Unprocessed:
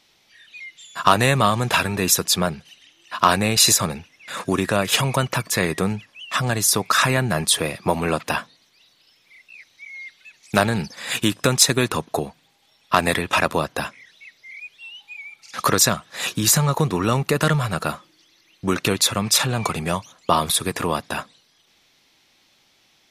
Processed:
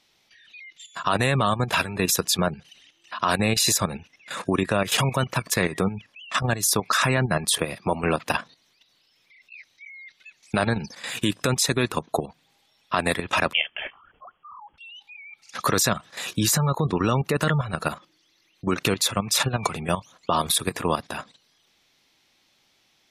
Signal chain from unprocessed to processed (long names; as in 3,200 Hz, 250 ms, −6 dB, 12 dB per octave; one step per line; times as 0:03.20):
gate on every frequency bin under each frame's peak −30 dB strong
output level in coarse steps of 11 dB
0:13.53–0:14.78: voice inversion scrambler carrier 3,300 Hz
level +1 dB